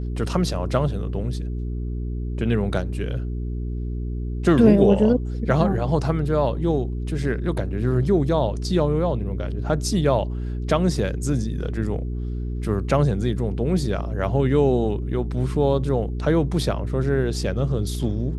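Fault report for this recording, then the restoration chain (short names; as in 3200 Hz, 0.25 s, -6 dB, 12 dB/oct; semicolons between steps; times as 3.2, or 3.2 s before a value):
hum 60 Hz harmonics 7 -27 dBFS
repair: de-hum 60 Hz, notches 7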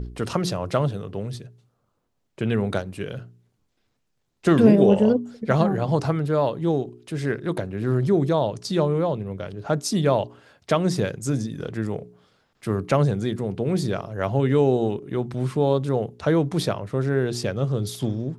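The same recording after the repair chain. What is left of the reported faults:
none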